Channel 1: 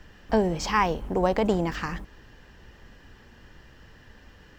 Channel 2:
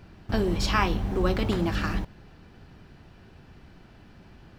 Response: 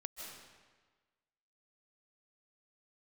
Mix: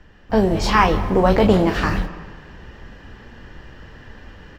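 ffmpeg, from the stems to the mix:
-filter_complex "[0:a]lowpass=f=2.8k:p=1,volume=-1dB,asplit=3[a][b][c];[b]volume=-4.5dB[d];[1:a]flanger=delay=19.5:depth=6.3:speed=2.1,volume=-1,adelay=12,volume=1dB[e];[c]apad=whole_len=202913[f];[e][f]sidechaingate=range=-33dB:threshold=-41dB:ratio=16:detection=peak[g];[2:a]atrim=start_sample=2205[h];[d][h]afir=irnorm=-1:irlink=0[i];[a][g][i]amix=inputs=3:normalize=0,dynaudnorm=f=270:g=3:m=9dB"

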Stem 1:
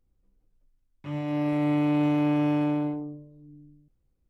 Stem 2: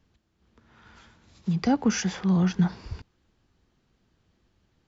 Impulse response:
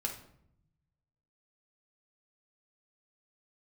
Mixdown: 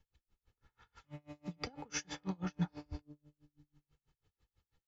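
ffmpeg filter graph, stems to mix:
-filter_complex "[0:a]alimiter=level_in=2dB:limit=-24dB:level=0:latency=1,volume=-2dB,volume=-12.5dB,asplit=2[a][b];[b]volume=-9dB[c];[1:a]aecho=1:1:2.3:0.64,flanger=delay=5.9:depth=3:regen=84:speed=0.42:shape=sinusoidal,volume=-2dB[d];[2:a]atrim=start_sample=2205[e];[c][e]afir=irnorm=-1:irlink=0[f];[a][d][f]amix=inputs=3:normalize=0,equalizer=f=350:t=o:w=0.49:g=-8,aeval=exprs='val(0)*pow(10,-33*(0.5-0.5*cos(2*PI*6.1*n/s))/20)':c=same"

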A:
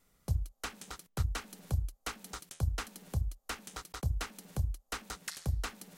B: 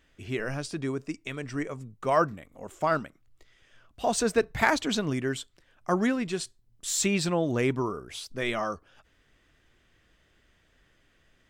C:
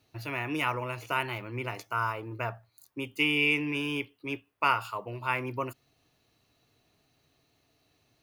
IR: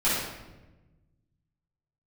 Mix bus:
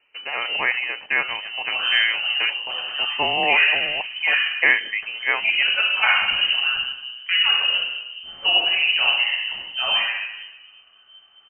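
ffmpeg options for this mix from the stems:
-filter_complex "[0:a]adelay=100,volume=-5dB,asplit=2[a][b];[b]volume=-20dB[c];[1:a]adelay=1400,volume=-2.5dB,asplit=2[d][e];[e]volume=-6.5dB[f];[2:a]equalizer=f=790:t=o:w=2.8:g=8,volume=2dB[g];[3:a]atrim=start_sample=2205[h];[c][f]amix=inputs=2:normalize=0[i];[i][h]afir=irnorm=-1:irlink=0[j];[a][d][g][j]amix=inputs=4:normalize=0,lowpass=f=2.6k:t=q:w=0.5098,lowpass=f=2.6k:t=q:w=0.6013,lowpass=f=2.6k:t=q:w=0.9,lowpass=f=2.6k:t=q:w=2.563,afreqshift=-3100"

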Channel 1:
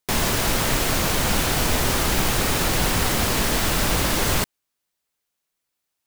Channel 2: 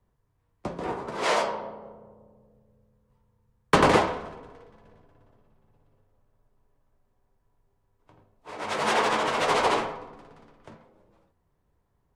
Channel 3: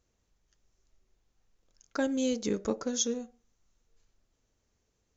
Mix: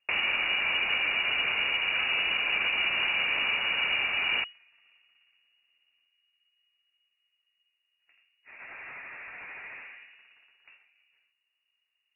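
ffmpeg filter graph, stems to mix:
-filter_complex "[0:a]equalizer=f=550:t=o:w=0.46:g=14,volume=-5dB[a];[1:a]acompressor=threshold=-29dB:ratio=3,asoftclip=type=tanh:threshold=-29.5dB,volume=-9dB[b];[2:a]volume=-3dB[c];[a][b][c]amix=inputs=3:normalize=0,lowpass=f=2.5k:t=q:w=0.5098,lowpass=f=2.5k:t=q:w=0.6013,lowpass=f=2.5k:t=q:w=0.9,lowpass=f=2.5k:t=q:w=2.563,afreqshift=-2900,alimiter=limit=-18dB:level=0:latency=1:release=402"

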